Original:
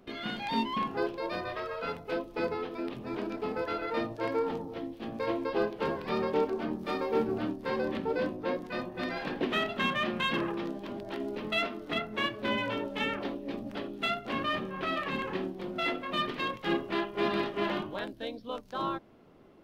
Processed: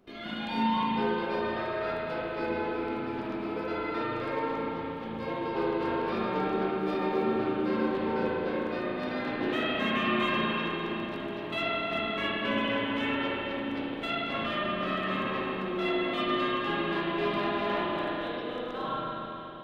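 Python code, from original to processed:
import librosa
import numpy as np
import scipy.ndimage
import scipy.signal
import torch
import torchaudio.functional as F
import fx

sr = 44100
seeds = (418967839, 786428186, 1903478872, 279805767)

y = fx.quant_float(x, sr, bits=8)
y = fx.rev_spring(y, sr, rt60_s=3.5, pass_ms=(36, 58), chirp_ms=20, drr_db=-7.5)
y = F.gain(torch.from_numpy(y), -5.5).numpy()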